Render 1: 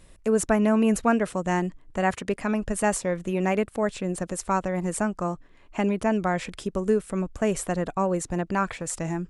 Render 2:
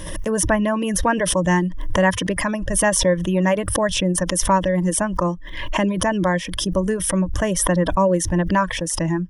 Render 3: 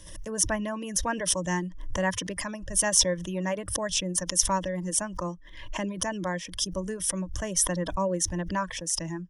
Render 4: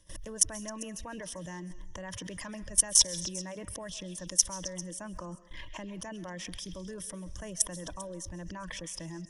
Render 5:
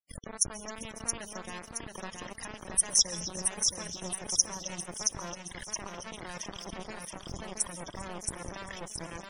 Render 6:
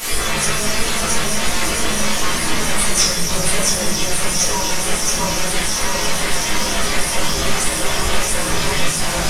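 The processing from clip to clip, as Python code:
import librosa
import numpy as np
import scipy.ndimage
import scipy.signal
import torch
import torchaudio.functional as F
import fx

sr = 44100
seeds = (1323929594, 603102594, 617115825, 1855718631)

y1 = fx.dereverb_blind(x, sr, rt60_s=0.87)
y1 = fx.ripple_eq(y1, sr, per_octave=1.2, db=12)
y1 = fx.pre_swell(y1, sr, db_per_s=43.0)
y1 = y1 * 10.0 ** (4.5 / 20.0)
y2 = fx.peak_eq(y1, sr, hz=6300.0, db=11.5, octaves=1.5)
y2 = fx.band_widen(y2, sr, depth_pct=40)
y2 = y2 * 10.0 ** (-11.5 / 20.0)
y3 = fx.level_steps(y2, sr, step_db=22)
y3 = fx.echo_stepped(y3, sr, ms=132, hz=2800.0, octaves=0.7, feedback_pct=70, wet_db=-11.5)
y3 = fx.rev_freeverb(y3, sr, rt60_s=0.79, hf_ratio=0.65, predelay_ms=100, drr_db=17.0)
y3 = y3 * 10.0 ** (3.0 / 20.0)
y4 = fx.quant_dither(y3, sr, seeds[0], bits=6, dither='none')
y4 = fx.spec_topn(y4, sr, count=64)
y4 = fx.echo_feedback(y4, sr, ms=672, feedback_pct=46, wet_db=-4.5)
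y5 = fx.delta_mod(y4, sr, bps=64000, step_db=-25.5)
y5 = fx.chorus_voices(y5, sr, voices=4, hz=0.36, base_ms=16, depth_ms=3.9, mix_pct=50)
y5 = fx.room_shoebox(y5, sr, seeds[1], volume_m3=85.0, walls='mixed', distance_m=1.7)
y5 = y5 * 10.0 ** (7.5 / 20.0)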